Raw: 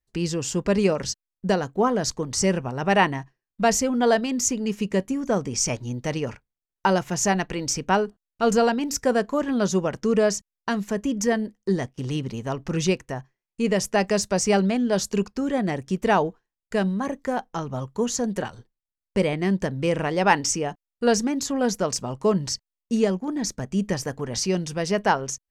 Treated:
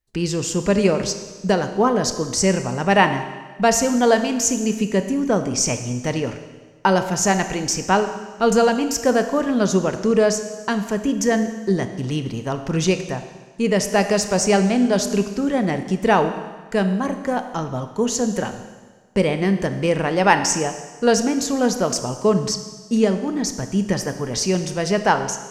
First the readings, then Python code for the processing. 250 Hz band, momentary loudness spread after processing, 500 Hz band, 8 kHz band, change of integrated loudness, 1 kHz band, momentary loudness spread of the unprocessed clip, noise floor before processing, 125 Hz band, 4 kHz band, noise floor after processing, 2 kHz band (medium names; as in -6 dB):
+4.0 dB, 8 LU, +4.0 dB, +4.0 dB, +4.0 dB, +4.0 dB, 8 LU, under -85 dBFS, +4.0 dB, +4.0 dB, -41 dBFS, +4.0 dB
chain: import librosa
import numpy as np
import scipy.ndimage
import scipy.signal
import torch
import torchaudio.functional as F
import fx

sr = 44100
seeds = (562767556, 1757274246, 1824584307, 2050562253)

y = fx.rev_schroeder(x, sr, rt60_s=1.4, comb_ms=25, drr_db=8.5)
y = F.gain(torch.from_numpy(y), 3.5).numpy()